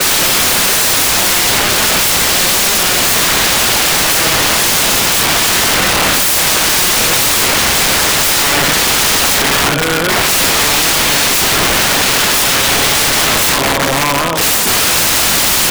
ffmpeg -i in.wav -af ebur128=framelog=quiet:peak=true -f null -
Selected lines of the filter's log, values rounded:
Integrated loudness:
  I:          -9.2 LUFS
  Threshold: -19.2 LUFS
Loudness range:
  LRA:         0.8 LU
  Threshold: -29.2 LUFS
  LRA low:    -9.7 LUFS
  LRA high:   -8.9 LUFS
True peak:
  Peak:       -1.4 dBFS